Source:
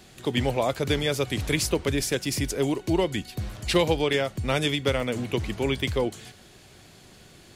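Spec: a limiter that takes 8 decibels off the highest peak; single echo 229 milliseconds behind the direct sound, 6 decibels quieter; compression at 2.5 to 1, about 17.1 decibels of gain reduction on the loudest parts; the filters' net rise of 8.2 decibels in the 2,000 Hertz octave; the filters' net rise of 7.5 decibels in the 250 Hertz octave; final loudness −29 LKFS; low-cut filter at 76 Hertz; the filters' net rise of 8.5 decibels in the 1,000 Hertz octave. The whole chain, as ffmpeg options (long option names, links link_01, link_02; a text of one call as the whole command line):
ffmpeg -i in.wav -af "highpass=76,equalizer=frequency=250:width_type=o:gain=9,equalizer=frequency=1000:width_type=o:gain=8.5,equalizer=frequency=2000:width_type=o:gain=7.5,acompressor=threshold=-40dB:ratio=2.5,alimiter=level_in=4dB:limit=-24dB:level=0:latency=1,volume=-4dB,aecho=1:1:229:0.501,volume=9dB" out.wav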